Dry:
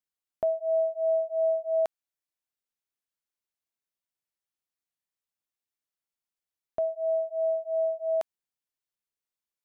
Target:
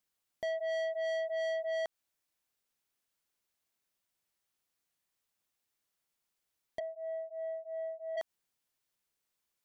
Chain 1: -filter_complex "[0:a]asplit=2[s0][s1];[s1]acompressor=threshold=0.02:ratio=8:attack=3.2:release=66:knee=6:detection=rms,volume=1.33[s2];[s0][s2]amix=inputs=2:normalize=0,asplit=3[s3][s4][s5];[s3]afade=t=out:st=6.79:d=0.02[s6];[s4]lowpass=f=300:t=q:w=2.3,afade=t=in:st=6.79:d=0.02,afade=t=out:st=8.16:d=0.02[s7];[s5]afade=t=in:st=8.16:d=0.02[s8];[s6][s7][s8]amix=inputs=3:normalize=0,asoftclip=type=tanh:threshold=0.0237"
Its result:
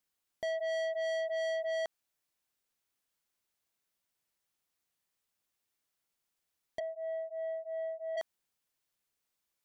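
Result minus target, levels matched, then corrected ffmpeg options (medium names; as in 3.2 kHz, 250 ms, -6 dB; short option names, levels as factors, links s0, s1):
compression: peak gain reduction -10 dB
-filter_complex "[0:a]asplit=2[s0][s1];[s1]acompressor=threshold=0.00531:ratio=8:attack=3.2:release=66:knee=6:detection=rms,volume=1.33[s2];[s0][s2]amix=inputs=2:normalize=0,asplit=3[s3][s4][s5];[s3]afade=t=out:st=6.79:d=0.02[s6];[s4]lowpass=f=300:t=q:w=2.3,afade=t=in:st=6.79:d=0.02,afade=t=out:st=8.16:d=0.02[s7];[s5]afade=t=in:st=8.16:d=0.02[s8];[s6][s7][s8]amix=inputs=3:normalize=0,asoftclip=type=tanh:threshold=0.0237"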